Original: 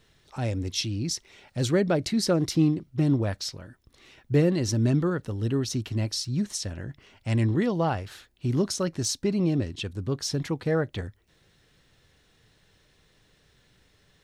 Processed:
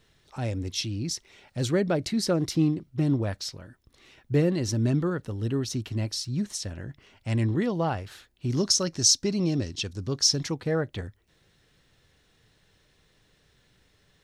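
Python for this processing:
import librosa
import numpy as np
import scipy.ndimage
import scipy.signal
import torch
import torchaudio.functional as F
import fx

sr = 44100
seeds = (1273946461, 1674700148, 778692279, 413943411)

y = fx.peak_eq(x, sr, hz=5600.0, db=13.0, octaves=0.93, at=(8.5, 10.55))
y = F.gain(torch.from_numpy(y), -1.5).numpy()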